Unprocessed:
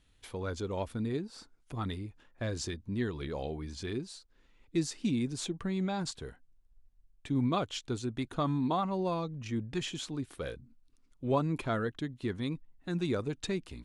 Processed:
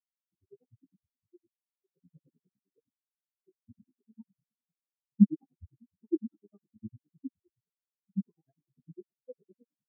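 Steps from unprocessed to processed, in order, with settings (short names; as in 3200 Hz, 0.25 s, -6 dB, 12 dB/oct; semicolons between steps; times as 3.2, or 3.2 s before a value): regenerating reverse delay 0.249 s, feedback 78%, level -13.5 dB; reverb RT60 1.3 s, pre-delay 3 ms, DRR 2.5 dB; in parallel at -6 dB: Schmitt trigger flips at -35.5 dBFS; on the sum: HPF 85 Hz 12 dB/oct; hard clip -16 dBFS, distortion -25 dB; grains 79 ms, grains 7/s, pitch spread up and down by 7 st; tempo 1.4×; bell 2700 Hz -15 dB 0.72 oct; spectral expander 4:1; gain +7.5 dB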